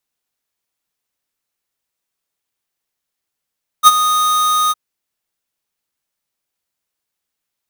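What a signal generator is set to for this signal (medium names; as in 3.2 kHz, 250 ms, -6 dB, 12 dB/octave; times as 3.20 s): ADSR square 1.24 kHz, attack 42 ms, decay 32 ms, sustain -11.5 dB, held 0.88 s, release 30 ms -3 dBFS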